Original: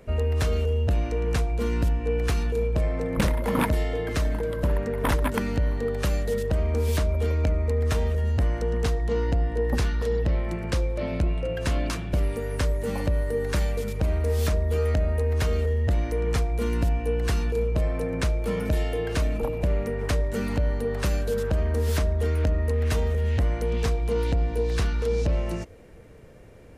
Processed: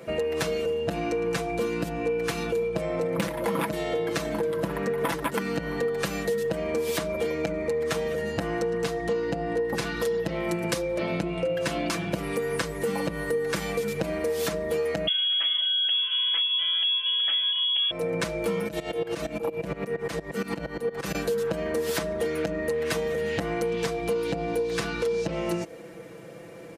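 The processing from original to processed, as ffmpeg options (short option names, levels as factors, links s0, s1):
-filter_complex "[0:a]asettb=1/sr,asplit=3[s0][s1][s2];[s0]atrim=end=9.964[s3];[s1]atrim=start=9.96:end=10.82,asetpts=PTS-STARTPTS,afade=t=in:d=0.004:c=qsin,afade=t=out:st=0.856:d=0.004:c=qsin,highshelf=f=8200:g=12[s4];[s2]atrim=start=10.816[s5];[s3][s4]acrossfade=d=0.004:c1=hsin:c2=qsin[s6];[s6][s5]acrossfade=d=0.004:c1=qsin:c2=hsin,asettb=1/sr,asplit=3[s7][s8][s9];[s7]atrim=end=15.074[s10];[s8]atrim=start=15.07:end=17.91,asetpts=PTS-STARTPTS,afade=t=in:d=0.004:c=qsin,afade=t=out:st=2.836:d=0.004:c=qsin,lowpass=f=2900:t=q:w=0.5098,lowpass=f=2900:t=q:w=0.6013,lowpass=f=2900:t=q:w=0.9,lowpass=f=2900:t=q:w=2.563,afreqshift=-3400[s11];[s9]atrim=start=17.906[s12];[s10][s11]acrossfade=d=0.004:c1=hsin:c2=qsin[s13];[s13][s12]acrossfade=d=0.004:c1=qsin:c2=hsin,asettb=1/sr,asplit=3[s14][s15][s16];[s14]atrim=end=18.684[s17];[s15]atrim=start=18.68:end=21.15,asetpts=PTS-STARTPTS,afade=t=in:d=0.004:c=qsin,afade=t=out:st=2.466:d=0.004:c=qsin,aeval=exprs='val(0)*pow(10,-20*if(lt(mod(-8.6*n/s,1),2*abs(-8.6)/1000),1-mod(-8.6*n/s,1)/(2*abs(-8.6)/1000),(mod(-8.6*n/s,1)-2*abs(-8.6)/1000)/(1-2*abs(-8.6)/1000))/20)':c=same[s18];[s16]atrim=start=21.146[s19];[s17][s18]acrossfade=d=0.004:c1=hsin:c2=qsin[s20];[s20][s19]acrossfade=d=0.004:c1=qsin:c2=hsin,highpass=190,aecho=1:1:6:0.75,acompressor=threshold=0.0282:ratio=6,volume=2.11"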